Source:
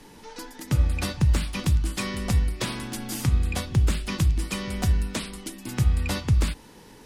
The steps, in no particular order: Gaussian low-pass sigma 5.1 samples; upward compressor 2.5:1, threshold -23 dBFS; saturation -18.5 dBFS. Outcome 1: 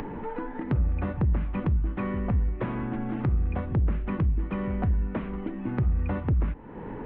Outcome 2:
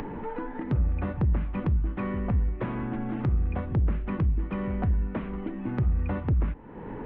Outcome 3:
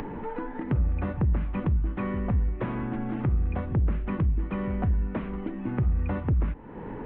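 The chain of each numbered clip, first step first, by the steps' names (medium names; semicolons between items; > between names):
Gaussian low-pass > saturation > upward compressor; Gaussian low-pass > upward compressor > saturation; saturation > Gaussian low-pass > upward compressor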